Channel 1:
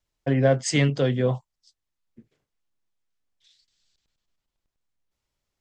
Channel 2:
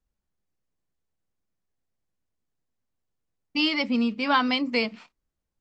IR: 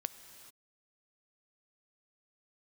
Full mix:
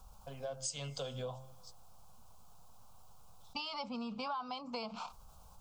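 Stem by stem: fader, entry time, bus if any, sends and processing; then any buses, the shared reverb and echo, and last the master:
-4.0 dB, 0.00 s, send -17 dB, tilt +3 dB/oct; de-hum 131.5 Hz, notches 18; auto duck -16 dB, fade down 0.20 s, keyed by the second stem
-8.5 dB, 0.00 s, no send, band shelf 1000 Hz +8 dB 1.1 oct; fast leveller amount 50%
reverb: on, pre-delay 3 ms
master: fixed phaser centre 790 Hz, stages 4; compressor 6:1, threshold -38 dBFS, peak gain reduction 16 dB

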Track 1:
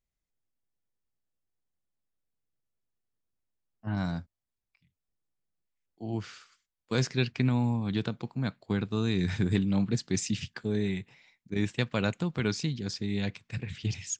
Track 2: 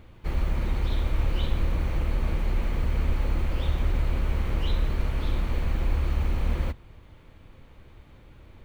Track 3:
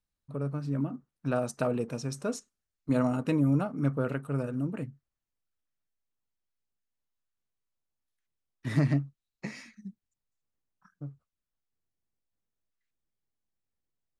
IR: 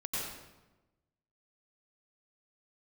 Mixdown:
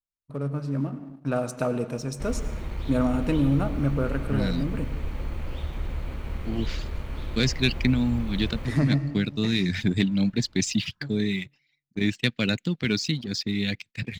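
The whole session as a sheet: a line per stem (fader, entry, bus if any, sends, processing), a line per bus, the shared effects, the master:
-2.0 dB, 0.45 s, no send, HPF 63 Hz; reverb removal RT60 0.63 s; graphic EQ 250/1000/2000/4000 Hz +6/-11/+8/+8 dB
-11.0 dB, 1.95 s, send -10.5 dB, dry
-2.0 dB, 0.00 s, send -14 dB, dry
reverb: on, RT60 1.1 s, pre-delay 85 ms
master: gate -50 dBFS, range -11 dB; sample leveller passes 1

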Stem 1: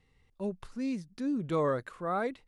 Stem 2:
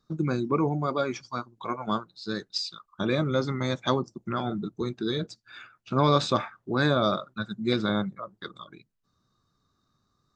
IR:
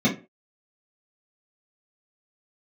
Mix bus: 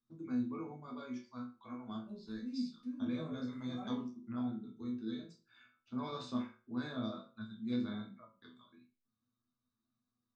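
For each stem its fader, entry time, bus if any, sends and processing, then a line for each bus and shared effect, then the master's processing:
-4.0 dB, 1.65 s, send -15.5 dB, rotary speaker horn 5.5 Hz
-3.5 dB, 0.00 s, send -21.5 dB, dry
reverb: on, RT60 0.30 s, pre-delay 3 ms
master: flange 1.1 Hz, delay 4.6 ms, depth 9.9 ms, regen -59%; resonator bank E2 sus4, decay 0.33 s

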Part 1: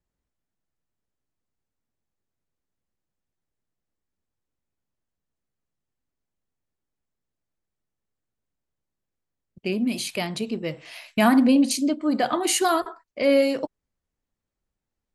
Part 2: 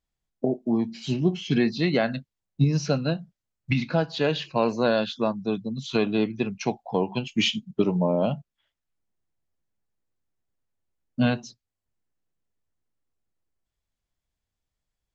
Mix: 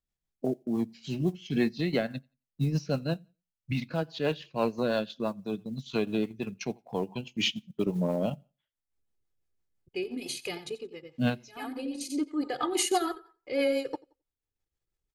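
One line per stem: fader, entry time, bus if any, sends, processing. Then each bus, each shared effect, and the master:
-5.5 dB, 0.30 s, no send, echo send -13.5 dB, comb 2.4 ms, depth 96%; auto duck -19 dB, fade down 0.45 s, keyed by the second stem
-2.5 dB, 0.00 s, no send, echo send -23.5 dB, modulation noise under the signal 32 dB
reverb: off
echo: feedback echo 88 ms, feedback 20%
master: transient shaper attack -4 dB, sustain -8 dB; rotary speaker horn 6 Hz

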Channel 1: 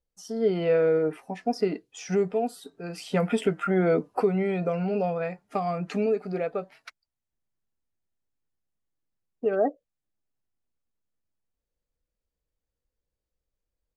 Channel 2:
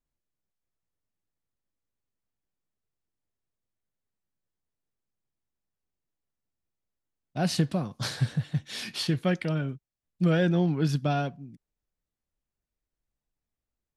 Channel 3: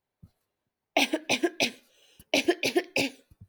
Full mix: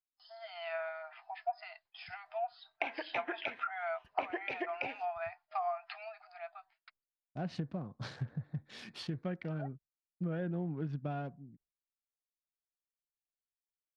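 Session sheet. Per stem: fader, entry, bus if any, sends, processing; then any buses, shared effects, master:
-5.0 dB, 0.00 s, no bus, no send, FFT band-pass 630–5200 Hz; auto duck -14 dB, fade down 1.45 s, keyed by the second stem
-8.5 dB, 0.00 s, bus A, no send, Wiener smoothing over 15 samples
-8.5 dB, 1.85 s, bus A, no send, graphic EQ 250/1000/2000 Hz -7/+8/+12 dB
bus A: 0.0 dB, high shelf 4100 Hz -10 dB; compressor 2.5:1, threshold -35 dBFS, peak gain reduction 9 dB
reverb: off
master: gate with hold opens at -56 dBFS; treble ducked by the level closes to 1500 Hz, closed at -31 dBFS

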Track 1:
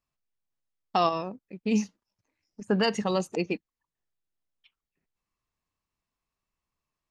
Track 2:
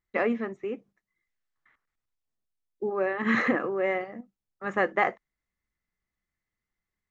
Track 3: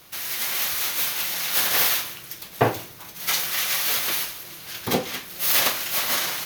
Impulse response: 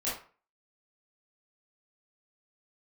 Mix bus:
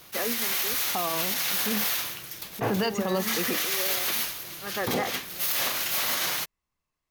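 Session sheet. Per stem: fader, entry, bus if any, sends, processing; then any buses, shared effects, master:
+1.0 dB, 0.00 s, no send, dry
-6.0 dB, 0.00 s, no send, dry
0.0 dB, 0.00 s, no send, attack slew limiter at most 430 dB/s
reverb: off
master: limiter -17 dBFS, peak gain reduction 10.5 dB

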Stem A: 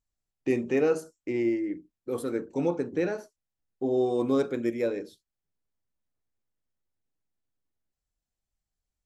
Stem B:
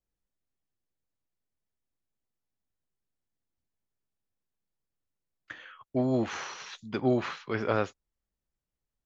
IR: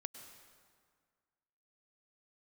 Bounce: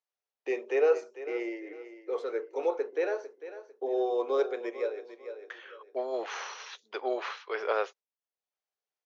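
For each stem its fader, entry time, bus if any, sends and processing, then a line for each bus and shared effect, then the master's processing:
+1.5 dB, 0.00 s, no send, echo send -13.5 dB, auto duck -17 dB, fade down 0.85 s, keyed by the second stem
+0.5 dB, 0.00 s, no send, no echo send, gate with hold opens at -48 dBFS; high shelf 5800 Hz +8.5 dB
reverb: off
echo: feedback echo 0.449 s, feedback 31%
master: Chebyshev band-pass 420–6300 Hz, order 4; high shelf 4900 Hz -10 dB

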